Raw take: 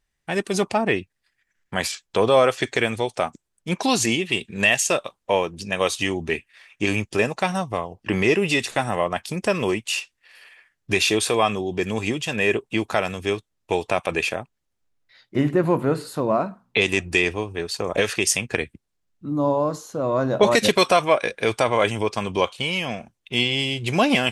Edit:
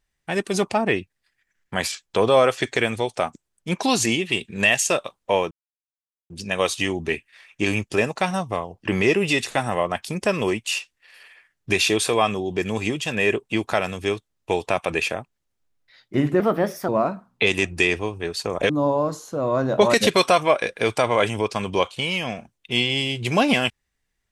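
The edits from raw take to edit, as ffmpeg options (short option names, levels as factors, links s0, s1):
-filter_complex "[0:a]asplit=5[s0][s1][s2][s3][s4];[s0]atrim=end=5.51,asetpts=PTS-STARTPTS,afade=t=out:st=5.506:d=0.004:c=hsin,apad=pad_dur=0.79[s5];[s1]atrim=start=5.51:end=15.614,asetpts=PTS-STARTPTS,afade=t=in:d=0.004:c=hsin[s6];[s2]atrim=start=15.61:end=16.23,asetpts=PTS-STARTPTS,asetrate=56448,aresample=44100[s7];[s3]atrim=start=16.226:end=18.042[s8];[s4]atrim=start=19.308[s9];[s5][s6]concat=n=2:v=0:a=1[s10];[s10][s7]acrossfade=d=0.004:c1=hsin:c2=hsin[s11];[s11][s8]acrossfade=d=0.004:c1=hsin:c2=hsin[s12];[s12][s9]acrossfade=d=0.004:c1=hsin:c2=hsin"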